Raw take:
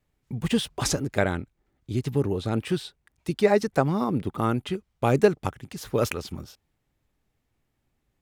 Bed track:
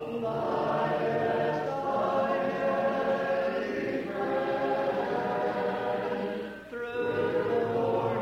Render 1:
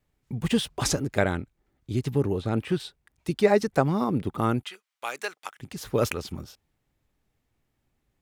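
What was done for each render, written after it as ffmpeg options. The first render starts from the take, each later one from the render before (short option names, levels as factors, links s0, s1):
-filter_complex "[0:a]asettb=1/sr,asplit=3[s0][s1][s2];[s0]atrim=end=2.084[s3];[s1]atrim=start=2.08:end=2.8,asetpts=PTS-STARTPTS,afade=t=in:d=0.004:c=qsin,afade=t=out:st=0.716:d=0.004:c=qsin,acrossover=split=3000[s4][s5];[s5]acompressor=threshold=0.00398:ratio=4:attack=1:release=60[s6];[s4][s6]amix=inputs=2:normalize=0[s7];[s2]atrim=start=2.796[s8];[s3][s7]acrossfade=d=0.004:c1=hsin:c2=qsin[s9];[s9][s8]acrossfade=d=0.004:c1=qsin:c2=hsin,asettb=1/sr,asplit=3[s10][s11][s12];[s10]atrim=end=4.634[s13];[s11]atrim=start=4.63:end=5.6,asetpts=PTS-STARTPTS,afade=t=in:d=0.004:c=qsin,afade=t=out:st=0.966:d=0.004:c=qsin,highpass=1300[s14];[s12]atrim=start=5.596[s15];[s13][s14]acrossfade=d=0.004:c1=hsin:c2=qsin[s16];[s16][s15]acrossfade=d=0.004:c1=qsin:c2=hsin"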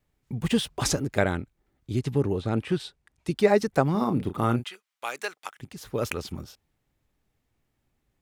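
-filter_complex "[0:a]asettb=1/sr,asplit=3[s0][s1][s2];[s0]atrim=end=1.994[s3];[s1]atrim=start=1.99:end=3.35,asetpts=PTS-STARTPTS,afade=t=in:d=0.004:c=qsin,afade=t=out:st=1.356:d=0.004:c=qsin,lowpass=11000[s4];[s2]atrim=start=3.346[s5];[s3][s4]acrossfade=d=0.004:c1=hsin:c2=qsin[s6];[s6][s5]acrossfade=d=0.004:c1=qsin:c2=hsin,asettb=1/sr,asplit=3[s7][s8][s9];[s7]atrim=end=3.914[s10];[s8]atrim=start=3.91:end=4.64,asetpts=PTS-STARTPTS,afade=t=in:d=0.004:c=qsin,afade=t=out:st=0.726:d=0.004:c=qsin,asplit=2[s11][s12];[s12]adelay=34,volume=0.355[s13];[s11][s13]amix=inputs=2:normalize=0,atrim=end_sample=32193[s14];[s9]atrim=start=4.636[s15];[s10][s14]acrossfade=d=0.004:c1=hsin:c2=qsin[s16];[s16][s15]acrossfade=d=0.004:c1=qsin:c2=hsin,asplit=3[s17][s18][s19];[s17]atrim=end=5.652[s20];[s18]atrim=start=5.648:end=6.092,asetpts=PTS-STARTPTS,volume=0.596[s21];[s19]atrim=start=6.088[s22];[s20][s21]acrossfade=d=0.004:c1=hsin:c2=hsin[s23];[s23][s22]acrossfade=d=0.004:c1=hsin:c2=hsin"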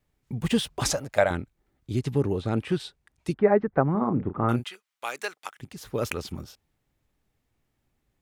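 -filter_complex "[0:a]asettb=1/sr,asplit=3[s0][s1][s2];[s0]atrim=end=0.914[s3];[s1]atrim=start=0.91:end=1.31,asetpts=PTS-STARTPTS,afade=t=in:d=0.004:c=qsin,afade=t=out:st=0.396:d=0.004:c=qsin,lowshelf=f=470:t=q:w=3:g=-7[s4];[s2]atrim=start=1.306[s5];[s3][s4]acrossfade=d=0.004:c1=hsin:c2=qsin[s6];[s6][s5]acrossfade=d=0.004:c1=qsin:c2=hsin,asettb=1/sr,asplit=3[s7][s8][s9];[s7]atrim=end=3.344[s10];[s8]atrim=start=3.34:end=4.49,asetpts=PTS-STARTPTS,afade=t=in:d=0.004:c=qsin,afade=t=out:st=1.146:d=0.004:c=qsin,lowpass=f=1800:w=0.5412,lowpass=f=1800:w=1.3066[s11];[s9]atrim=start=4.486[s12];[s10][s11]acrossfade=d=0.004:c1=hsin:c2=qsin[s13];[s13][s12]acrossfade=d=0.004:c1=qsin:c2=hsin"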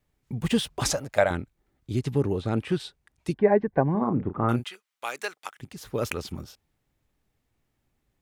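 -filter_complex "[0:a]asettb=1/sr,asplit=3[s0][s1][s2];[s0]atrim=end=3.314[s3];[s1]atrim=start=3.31:end=4.03,asetpts=PTS-STARTPTS,afade=t=in:d=0.004:c=qsin,afade=t=out:st=0.716:d=0.004:c=qsin,asuperstop=centerf=1300:order=4:qfactor=4.1[s4];[s2]atrim=start=4.026[s5];[s3][s4]acrossfade=d=0.004:c1=hsin:c2=qsin[s6];[s6][s5]acrossfade=d=0.004:c1=qsin:c2=hsin"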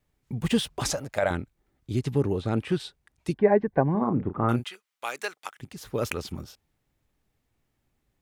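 -filter_complex "[0:a]asplit=3[s0][s1][s2];[s0]afade=t=out:st=0.67:d=0.02[s3];[s1]acompressor=threshold=0.0562:ratio=2:attack=3.2:release=140:knee=1:detection=peak,afade=t=in:st=0.67:d=0.02,afade=t=out:st=1.22:d=0.02[s4];[s2]afade=t=in:st=1.22:d=0.02[s5];[s3][s4][s5]amix=inputs=3:normalize=0"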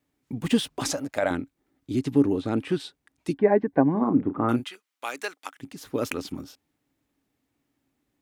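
-af "highpass=f=180:p=1,equalizer=f=280:w=4.4:g=13"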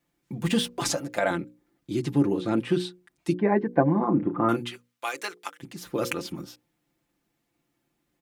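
-af "bandreject=f=60:t=h:w=6,bandreject=f=120:t=h:w=6,bandreject=f=180:t=h:w=6,bandreject=f=240:t=h:w=6,bandreject=f=300:t=h:w=6,bandreject=f=360:t=h:w=6,bandreject=f=420:t=h:w=6,bandreject=f=480:t=h:w=6,bandreject=f=540:t=h:w=6,aecho=1:1:5.8:0.7"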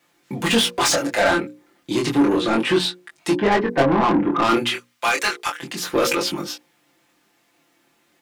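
-filter_complex "[0:a]asplit=2[s0][s1];[s1]highpass=f=720:p=1,volume=22.4,asoftclip=type=tanh:threshold=0.531[s2];[s0][s2]amix=inputs=2:normalize=0,lowpass=f=7000:p=1,volume=0.501,flanger=delay=20:depth=6.2:speed=0.31"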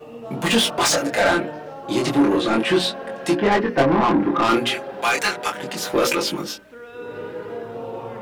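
-filter_complex "[1:a]volume=0.631[s0];[0:a][s0]amix=inputs=2:normalize=0"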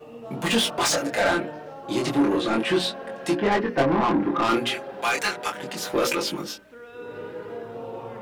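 -af "volume=0.631"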